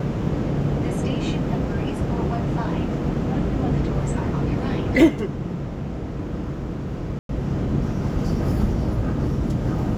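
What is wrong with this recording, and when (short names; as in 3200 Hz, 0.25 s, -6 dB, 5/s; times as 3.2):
7.19–7.29 gap 0.102 s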